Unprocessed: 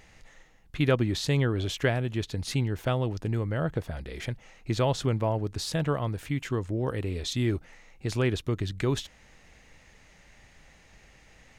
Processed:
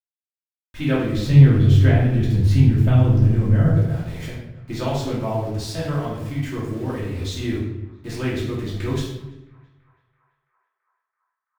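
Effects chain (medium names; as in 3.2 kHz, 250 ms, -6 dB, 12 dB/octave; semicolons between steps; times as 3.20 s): 1.15–3.75 s: tone controls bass +13 dB, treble -5 dB; small samples zeroed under -40.5 dBFS; band-passed feedback delay 333 ms, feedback 75%, band-pass 1.2 kHz, level -22 dB; simulated room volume 250 m³, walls mixed, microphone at 2.7 m; trim -6 dB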